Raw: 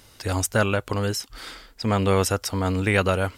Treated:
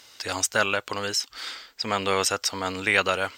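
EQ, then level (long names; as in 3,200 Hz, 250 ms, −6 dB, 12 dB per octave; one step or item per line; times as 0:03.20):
moving average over 4 samples
spectral tilt +3.5 dB per octave
low-shelf EQ 150 Hz −7 dB
0.0 dB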